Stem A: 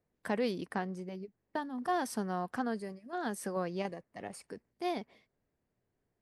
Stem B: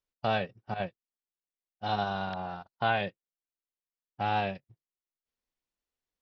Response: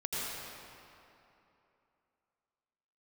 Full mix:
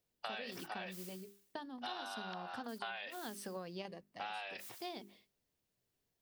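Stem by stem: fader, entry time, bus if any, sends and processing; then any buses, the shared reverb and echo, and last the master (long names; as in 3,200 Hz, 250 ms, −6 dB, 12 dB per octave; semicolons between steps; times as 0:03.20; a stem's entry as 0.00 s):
−6.0 dB, 0.00 s, no send, flat-topped bell 3,800 Hz +8.5 dB 1.2 octaves; mains-hum notches 50/100/150/200/250/300/350/400 Hz
−2.0 dB, 0.00 s, no send, high-pass filter 780 Hz 12 dB per octave; spectral tilt +2.5 dB per octave; level that may fall only so fast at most 60 dB per second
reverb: not used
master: downward compressor 12 to 1, threshold −40 dBFS, peak gain reduction 14.5 dB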